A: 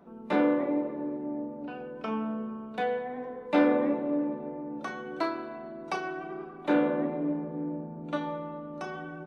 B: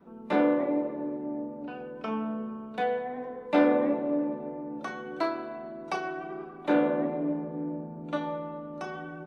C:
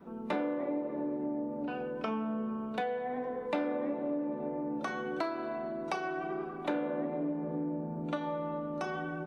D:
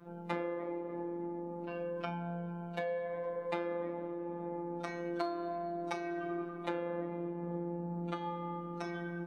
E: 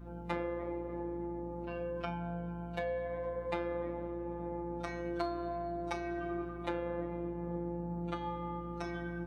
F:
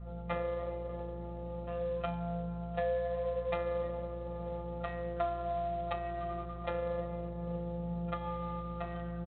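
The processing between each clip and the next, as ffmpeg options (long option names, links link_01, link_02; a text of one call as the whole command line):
ffmpeg -i in.wav -af "adynamicequalizer=threshold=0.0112:dfrequency=660:dqfactor=3.5:tfrequency=660:tqfactor=3.5:attack=5:release=100:ratio=0.375:range=2:mode=boostabove:tftype=bell" out.wav
ffmpeg -i in.wav -af "acompressor=threshold=-35dB:ratio=5,volume=3.5dB" out.wav
ffmpeg -i in.wav -af "afftfilt=real='hypot(re,im)*cos(PI*b)':imag='0':win_size=1024:overlap=0.75,volume=1dB" out.wav
ffmpeg -i in.wav -af "aeval=exprs='val(0)+0.00398*(sin(2*PI*60*n/s)+sin(2*PI*2*60*n/s)/2+sin(2*PI*3*60*n/s)/3+sin(2*PI*4*60*n/s)/4+sin(2*PI*5*60*n/s)/5)':channel_layout=same" out.wav
ffmpeg -i in.wav -af "adynamicsmooth=sensitivity=4:basefreq=1900,aecho=1:1:1.6:0.89" -ar 8000 -c:a adpcm_ima_wav out.wav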